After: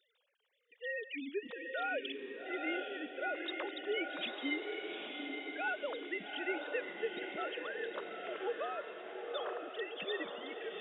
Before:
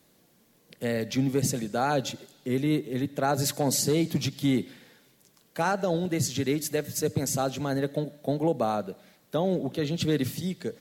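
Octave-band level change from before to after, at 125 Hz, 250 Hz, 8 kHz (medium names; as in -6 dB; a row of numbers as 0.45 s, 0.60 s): under -40 dB, -17.0 dB, under -40 dB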